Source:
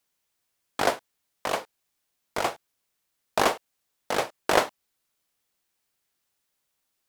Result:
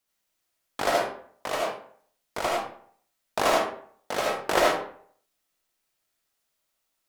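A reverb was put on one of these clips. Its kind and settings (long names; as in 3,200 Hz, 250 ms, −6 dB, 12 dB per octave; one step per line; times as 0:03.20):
comb and all-pass reverb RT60 0.56 s, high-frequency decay 0.65×, pre-delay 35 ms, DRR −3.5 dB
level −4 dB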